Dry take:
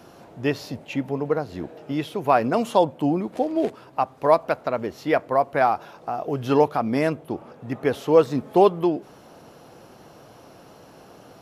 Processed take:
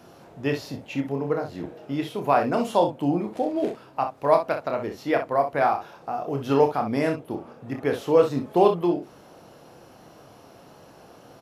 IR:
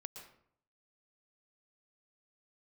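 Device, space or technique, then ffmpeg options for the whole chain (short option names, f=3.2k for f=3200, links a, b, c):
slapback doubling: -filter_complex "[0:a]asplit=3[a][b][c];[b]adelay=29,volume=-6dB[d];[c]adelay=63,volume=-9dB[e];[a][d][e]amix=inputs=3:normalize=0,volume=-3dB"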